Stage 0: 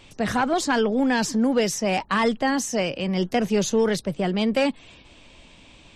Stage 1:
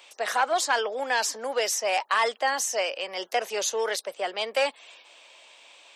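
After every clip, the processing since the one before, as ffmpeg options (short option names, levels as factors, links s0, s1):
-af "highpass=f=530:w=0.5412,highpass=f=530:w=1.3066,highshelf=f=11000:g=7.5"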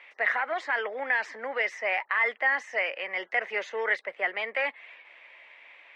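-af "alimiter=limit=0.112:level=0:latency=1:release=69,lowpass=f=2000:t=q:w=7.5,volume=0.596"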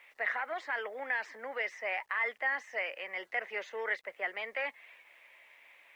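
-af "acrusher=bits=10:mix=0:aa=0.000001,volume=0.447"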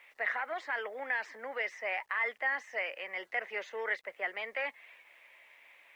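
-af anull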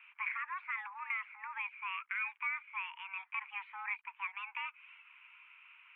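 -af "acompressor=threshold=0.00447:ratio=1.5,highpass=f=560:t=q:w=0.5412,highpass=f=560:t=q:w=1.307,lowpass=f=2300:t=q:w=0.5176,lowpass=f=2300:t=q:w=0.7071,lowpass=f=2300:t=q:w=1.932,afreqshift=390,volume=1.26"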